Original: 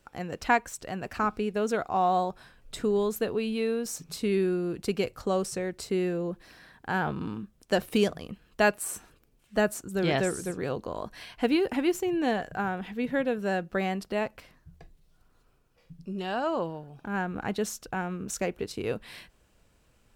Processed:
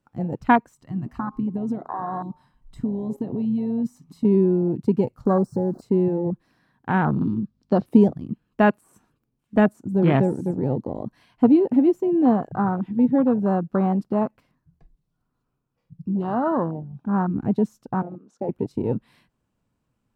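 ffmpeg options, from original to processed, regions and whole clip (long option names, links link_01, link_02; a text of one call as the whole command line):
ffmpeg -i in.wav -filter_complex "[0:a]asettb=1/sr,asplit=3[link_01][link_02][link_03];[link_01]atrim=end=0.734[link_04];[link_02]atrim=start=0.73:end=4.25,asetpts=PTS-STARTPTS,afade=type=in:duration=0.004:curve=qsin,afade=type=out:start_time=3.516:duration=0.004:curve=qsin,aecho=1:1:1:0.46,atrim=end_sample=155232,bandreject=frequency=82.12:width_type=h:width=4,bandreject=frequency=164.24:width_type=h:width=4,bandreject=frequency=246.36:width_type=h:width=4,bandreject=frequency=328.48:width_type=h:width=4,bandreject=frequency=410.6:width_type=h:width=4,bandreject=frequency=492.72:width_type=h:width=4,bandreject=frequency=574.84:width_type=h:width=4,bandreject=frequency=656.96:width_type=h:width=4,bandreject=frequency=739.08:width_type=h:width=4,bandreject=frequency=821.2:width_type=h:width=4,bandreject=frequency=903.32:width_type=h:width=4,bandreject=frequency=985.44:width_type=h:width=4,bandreject=frequency=1067.56:width_type=h:width=4,bandreject=frequency=1149.68:width_type=h:width=4,bandreject=frequency=1231.8:width_type=h:width=4,bandreject=frequency=1313.92:width_type=h:width=4,bandreject=frequency=1396.04:width_type=h:width=4,bandreject=frequency=1478.16:width_type=h:width=4,bandreject=frequency=1560.28:width_type=h:width=4,acompressor=threshold=-31dB:ratio=10:attack=3.2:release=140:knee=1:detection=peak[link_05];[link_03]atrim=start=4.246[link_06];[link_04][link_05]acrossfade=duration=0.004:curve1=hsin:curve2=qsin[link_07];[link_07][link_06]acrossfade=duration=0.004:curve1=qsin:curve2=hsin,asettb=1/sr,asplit=3[link_08][link_09][link_10];[link_08]atrim=end=5.254[link_11];[link_09]atrim=start=5.25:end=5.82,asetpts=PTS-STARTPTS,afade=type=in:duration=0.004:curve=qsin,afade=type=out:start_time=0.566:duration=0.004:curve=qsin,aeval=exprs='val(0)+0.5*0.0112*sgn(val(0))':channel_layout=same,asuperstop=centerf=2600:order=12:qfactor=1.1[link_12];[link_10]atrim=start=5.816[link_13];[link_11][link_12]acrossfade=duration=0.004:curve1=hsin:curve2=qsin[link_14];[link_14][link_13]acrossfade=duration=0.004:curve1=qsin:curve2=hsin,asettb=1/sr,asplit=3[link_15][link_16][link_17];[link_15]atrim=end=7.134[link_18];[link_16]atrim=start=7.13:end=7.86,asetpts=PTS-STARTPTS,afade=type=in:duration=0.004:curve=qsin,afade=type=out:start_time=0.726:duration=0.004:curve=qsin,aeval=exprs='val(0)+0.001*(sin(2*PI*50*n/s)+sin(2*PI*2*50*n/s)/2+sin(2*PI*3*50*n/s)/3+sin(2*PI*4*50*n/s)/4+sin(2*PI*5*50*n/s)/5)':channel_layout=same,lowpass=frequency=4600:width_type=q:width=3.3[link_19];[link_17]atrim=start=7.856[link_20];[link_18][link_19]acrossfade=duration=0.004:curve1=hsin:curve2=qsin[link_21];[link_21][link_20]acrossfade=duration=0.004:curve1=qsin:curve2=hsin,asettb=1/sr,asplit=3[link_22][link_23][link_24];[link_22]atrim=end=18.024[link_25];[link_23]atrim=start=18.02:end=18.49,asetpts=PTS-STARTPTS,afade=type=in:duration=0.004:curve=qsin,afade=type=out:start_time=0.466:duration=0.004:curve=qsin,highpass=360,lowpass=3900,equalizer=frequency=2200:width=0.88:gain=-12.5[link_26];[link_24]atrim=start=18.486[link_27];[link_25][link_26]acrossfade=duration=0.004:curve1=hsin:curve2=qsin[link_28];[link_28][link_27]acrossfade=duration=0.004:curve1=qsin:curve2=hsin,deesser=0.75,afwtdn=0.0316,equalizer=frequency=125:width_type=o:width=1:gain=11,equalizer=frequency=250:width_type=o:width=1:gain=11,equalizer=frequency=1000:width_type=o:width=1:gain=8" out.wav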